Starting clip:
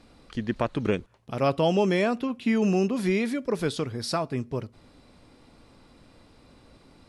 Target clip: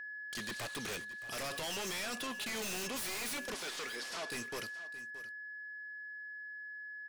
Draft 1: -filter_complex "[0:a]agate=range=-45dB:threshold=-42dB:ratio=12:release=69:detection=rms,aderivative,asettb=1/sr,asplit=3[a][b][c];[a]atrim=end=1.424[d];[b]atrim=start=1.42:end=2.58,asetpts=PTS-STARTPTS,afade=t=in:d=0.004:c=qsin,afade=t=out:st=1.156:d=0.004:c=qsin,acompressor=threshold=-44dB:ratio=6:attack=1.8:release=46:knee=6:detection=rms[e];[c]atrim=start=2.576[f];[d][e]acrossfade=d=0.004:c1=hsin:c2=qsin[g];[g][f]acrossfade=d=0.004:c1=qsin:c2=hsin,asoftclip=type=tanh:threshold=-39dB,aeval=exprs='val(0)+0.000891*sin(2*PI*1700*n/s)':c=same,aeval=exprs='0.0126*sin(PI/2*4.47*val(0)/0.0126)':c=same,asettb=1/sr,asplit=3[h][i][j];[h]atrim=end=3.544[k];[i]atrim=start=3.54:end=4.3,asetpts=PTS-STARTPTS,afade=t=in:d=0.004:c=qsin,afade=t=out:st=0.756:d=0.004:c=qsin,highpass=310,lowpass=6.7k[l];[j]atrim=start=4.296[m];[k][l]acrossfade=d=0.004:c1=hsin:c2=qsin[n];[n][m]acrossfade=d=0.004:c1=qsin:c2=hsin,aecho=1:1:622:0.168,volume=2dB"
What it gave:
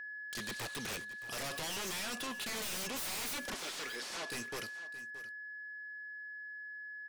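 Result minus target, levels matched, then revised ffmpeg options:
soft clip: distortion -4 dB
-filter_complex "[0:a]agate=range=-45dB:threshold=-42dB:ratio=12:release=69:detection=rms,aderivative,asettb=1/sr,asplit=3[a][b][c];[a]atrim=end=1.424[d];[b]atrim=start=1.42:end=2.58,asetpts=PTS-STARTPTS,afade=t=in:d=0.004:c=qsin,afade=t=out:st=1.156:d=0.004:c=qsin,acompressor=threshold=-44dB:ratio=6:attack=1.8:release=46:knee=6:detection=rms[e];[c]atrim=start=2.576[f];[d][e]acrossfade=d=0.004:c1=hsin:c2=qsin[g];[g][f]acrossfade=d=0.004:c1=qsin:c2=hsin,asoftclip=type=tanh:threshold=-45.5dB,aeval=exprs='val(0)+0.000891*sin(2*PI*1700*n/s)':c=same,aeval=exprs='0.0126*sin(PI/2*4.47*val(0)/0.0126)':c=same,asettb=1/sr,asplit=3[h][i][j];[h]atrim=end=3.544[k];[i]atrim=start=3.54:end=4.3,asetpts=PTS-STARTPTS,afade=t=in:d=0.004:c=qsin,afade=t=out:st=0.756:d=0.004:c=qsin,highpass=310,lowpass=6.7k[l];[j]atrim=start=4.296[m];[k][l]acrossfade=d=0.004:c1=hsin:c2=qsin[n];[n][m]acrossfade=d=0.004:c1=qsin:c2=hsin,aecho=1:1:622:0.168,volume=2dB"

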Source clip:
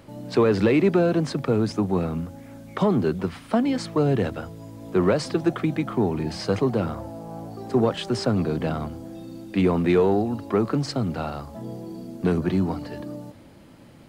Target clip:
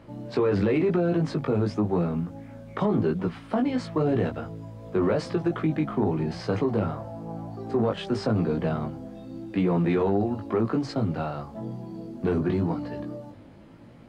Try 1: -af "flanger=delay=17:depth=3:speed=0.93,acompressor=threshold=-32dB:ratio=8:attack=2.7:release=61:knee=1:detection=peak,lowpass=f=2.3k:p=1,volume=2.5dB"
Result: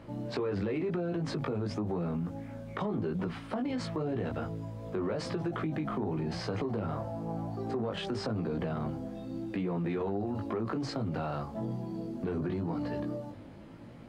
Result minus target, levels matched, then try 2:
compressor: peak gain reduction +9.5 dB
-af "flanger=delay=17:depth=3:speed=0.93,acompressor=threshold=-21dB:ratio=8:attack=2.7:release=61:knee=1:detection=peak,lowpass=f=2.3k:p=1,volume=2.5dB"

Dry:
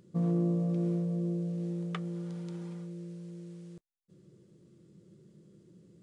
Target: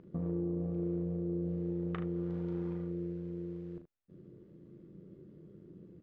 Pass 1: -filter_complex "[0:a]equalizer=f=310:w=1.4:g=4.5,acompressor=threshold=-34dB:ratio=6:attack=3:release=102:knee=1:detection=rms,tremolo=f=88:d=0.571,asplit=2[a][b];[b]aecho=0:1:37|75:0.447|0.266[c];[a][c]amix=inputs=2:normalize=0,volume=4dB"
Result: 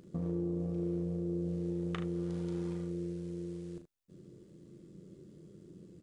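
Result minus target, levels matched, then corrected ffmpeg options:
2000 Hz band +2.5 dB
-filter_complex "[0:a]equalizer=f=310:w=1.4:g=4.5,acompressor=threshold=-34dB:ratio=6:attack=3:release=102:knee=1:detection=rms,lowpass=2k,tremolo=f=88:d=0.571,asplit=2[a][b];[b]aecho=0:1:37|75:0.447|0.266[c];[a][c]amix=inputs=2:normalize=0,volume=4dB"

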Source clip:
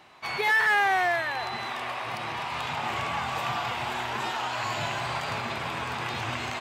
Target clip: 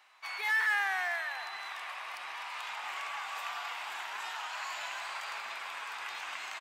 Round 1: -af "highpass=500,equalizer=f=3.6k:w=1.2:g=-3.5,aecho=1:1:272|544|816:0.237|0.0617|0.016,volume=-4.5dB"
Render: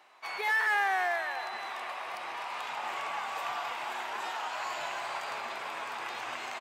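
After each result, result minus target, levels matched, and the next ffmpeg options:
echo 84 ms late; 500 Hz band +8.0 dB
-af "highpass=500,equalizer=f=3.6k:w=1.2:g=-3.5,aecho=1:1:188|376|564:0.237|0.0617|0.016,volume=-4.5dB"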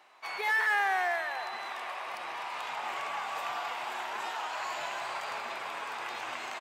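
500 Hz band +8.0 dB
-af "highpass=1.2k,equalizer=f=3.6k:w=1.2:g=-3.5,aecho=1:1:188|376|564:0.237|0.0617|0.016,volume=-4.5dB"

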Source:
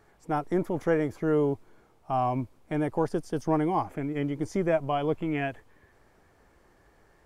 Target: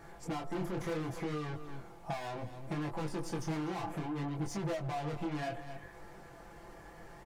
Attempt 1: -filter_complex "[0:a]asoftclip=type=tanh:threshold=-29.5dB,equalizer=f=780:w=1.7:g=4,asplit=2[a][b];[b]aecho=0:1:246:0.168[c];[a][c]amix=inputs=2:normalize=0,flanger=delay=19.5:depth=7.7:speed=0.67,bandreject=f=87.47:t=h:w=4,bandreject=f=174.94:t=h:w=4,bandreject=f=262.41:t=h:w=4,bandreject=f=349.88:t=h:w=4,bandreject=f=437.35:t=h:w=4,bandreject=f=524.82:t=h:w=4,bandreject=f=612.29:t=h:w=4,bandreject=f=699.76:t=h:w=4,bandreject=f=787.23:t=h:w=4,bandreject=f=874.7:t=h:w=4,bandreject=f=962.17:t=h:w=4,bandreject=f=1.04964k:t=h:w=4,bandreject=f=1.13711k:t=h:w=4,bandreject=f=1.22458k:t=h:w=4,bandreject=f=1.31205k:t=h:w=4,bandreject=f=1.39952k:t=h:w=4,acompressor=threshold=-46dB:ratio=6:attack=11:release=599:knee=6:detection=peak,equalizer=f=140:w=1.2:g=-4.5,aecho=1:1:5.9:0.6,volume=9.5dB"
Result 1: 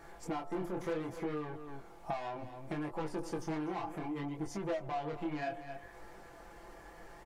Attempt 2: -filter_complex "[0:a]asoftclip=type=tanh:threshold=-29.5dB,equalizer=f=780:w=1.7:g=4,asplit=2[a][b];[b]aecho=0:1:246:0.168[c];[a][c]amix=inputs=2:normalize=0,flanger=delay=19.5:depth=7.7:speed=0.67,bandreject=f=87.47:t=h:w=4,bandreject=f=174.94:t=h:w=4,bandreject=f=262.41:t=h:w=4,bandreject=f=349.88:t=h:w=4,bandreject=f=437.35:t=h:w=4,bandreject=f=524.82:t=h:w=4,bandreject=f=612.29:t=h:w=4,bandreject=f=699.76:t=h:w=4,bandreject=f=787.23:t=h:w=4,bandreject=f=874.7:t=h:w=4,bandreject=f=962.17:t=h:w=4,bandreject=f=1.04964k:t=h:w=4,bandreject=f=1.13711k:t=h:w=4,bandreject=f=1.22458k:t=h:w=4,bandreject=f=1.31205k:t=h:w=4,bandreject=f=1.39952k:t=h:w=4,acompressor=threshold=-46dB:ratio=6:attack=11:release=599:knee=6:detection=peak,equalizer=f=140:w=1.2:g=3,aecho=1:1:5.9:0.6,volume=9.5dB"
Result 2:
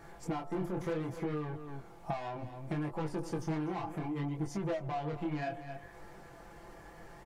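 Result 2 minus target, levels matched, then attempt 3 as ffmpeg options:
soft clip: distortion -4 dB
-filter_complex "[0:a]asoftclip=type=tanh:threshold=-38.5dB,equalizer=f=780:w=1.7:g=4,asplit=2[a][b];[b]aecho=0:1:246:0.168[c];[a][c]amix=inputs=2:normalize=0,flanger=delay=19.5:depth=7.7:speed=0.67,bandreject=f=87.47:t=h:w=4,bandreject=f=174.94:t=h:w=4,bandreject=f=262.41:t=h:w=4,bandreject=f=349.88:t=h:w=4,bandreject=f=437.35:t=h:w=4,bandreject=f=524.82:t=h:w=4,bandreject=f=612.29:t=h:w=4,bandreject=f=699.76:t=h:w=4,bandreject=f=787.23:t=h:w=4,bandreject=f=874.7:t=h:w=4,bandreject=f=962.17:t=h:w=4,bandreject=f=1.04964k:t=h:w=4,bandreject=f=1.13711k:t=h:w=4,bandreject=f=1.22458k:t=h:w=4,bandreject=f=1.31205k:t=h:w=4,bandreject=f=1.39952k:t=h:w=4,acompressor=threshold=-46dB:ratio=6:attack=11:release=599:knee=6:detection=peak,equalizer=f=140:w=1.2:g=3,aecho=1:1:5.9:0.6,volume=9.5dB"

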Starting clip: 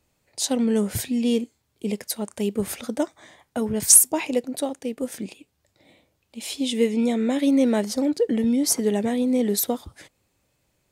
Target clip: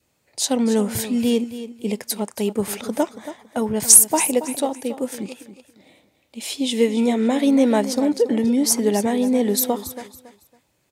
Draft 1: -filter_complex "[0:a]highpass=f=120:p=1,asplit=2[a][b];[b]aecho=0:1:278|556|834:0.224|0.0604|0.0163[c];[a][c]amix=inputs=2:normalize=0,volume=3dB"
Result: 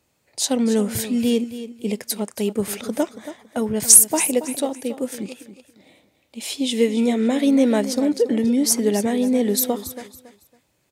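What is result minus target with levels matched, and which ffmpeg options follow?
1000 Hz band -4.0 dB
-filter_complex "[0:a]highpass=f=120:p=1,adynamicequalizer=threshold=0.00708:dfrequency=900:dqfactor=2.4:tfrequency=900:tqfactor=2.4:attack=5:release=100:ratio=0.45:range=3:mode=boostabove:tftype=bell,asplit=2[a][b];[b]aecho=0:1:278|556|834:0.224|0.0604|0.0163[c];[a][c]amix=inputs=2:normalize=0,volume=3dB"

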